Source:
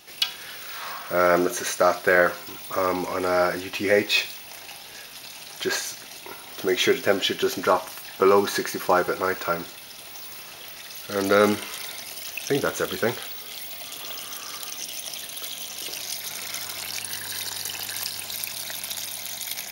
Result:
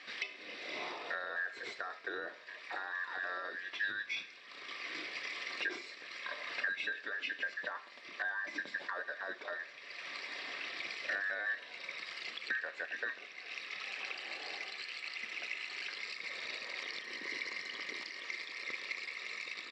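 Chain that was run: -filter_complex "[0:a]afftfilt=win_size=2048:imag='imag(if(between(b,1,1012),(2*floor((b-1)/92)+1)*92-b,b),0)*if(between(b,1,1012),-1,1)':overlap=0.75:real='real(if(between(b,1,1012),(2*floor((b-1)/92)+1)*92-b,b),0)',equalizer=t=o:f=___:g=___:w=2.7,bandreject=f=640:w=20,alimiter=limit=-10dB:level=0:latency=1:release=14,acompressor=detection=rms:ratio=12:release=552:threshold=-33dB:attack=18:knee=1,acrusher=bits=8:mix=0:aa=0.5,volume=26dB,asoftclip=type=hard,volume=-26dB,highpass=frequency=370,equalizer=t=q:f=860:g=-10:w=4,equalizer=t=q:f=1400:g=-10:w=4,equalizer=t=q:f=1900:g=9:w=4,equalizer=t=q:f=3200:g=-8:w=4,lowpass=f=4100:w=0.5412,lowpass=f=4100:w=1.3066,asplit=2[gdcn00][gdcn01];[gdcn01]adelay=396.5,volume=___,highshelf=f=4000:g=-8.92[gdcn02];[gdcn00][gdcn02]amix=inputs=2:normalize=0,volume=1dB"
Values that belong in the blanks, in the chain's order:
1600, 3, -27dB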